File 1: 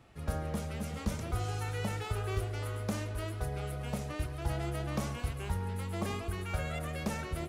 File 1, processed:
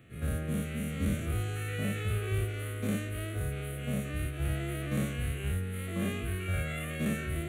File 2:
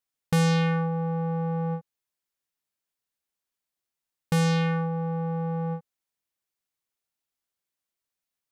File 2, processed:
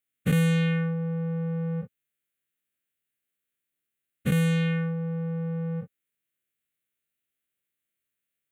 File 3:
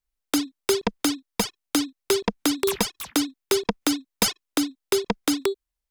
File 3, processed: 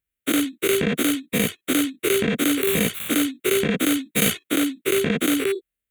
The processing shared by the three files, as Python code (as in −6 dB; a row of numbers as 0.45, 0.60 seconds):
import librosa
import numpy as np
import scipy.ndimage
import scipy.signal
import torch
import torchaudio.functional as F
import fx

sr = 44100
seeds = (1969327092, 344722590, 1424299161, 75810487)

y = fx.spec_dilate(x, sr, span_ms=120)
y = scipy.signal.sosfilt(scipy.signal.butter(2, 75.0, 'highpass', fs=sr, output='sos'), y)
y = fx.fixed_phaser(y, sr, hz=2200.0, stages=4)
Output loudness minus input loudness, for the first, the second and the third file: +2.5, −0.5, +3.5 LU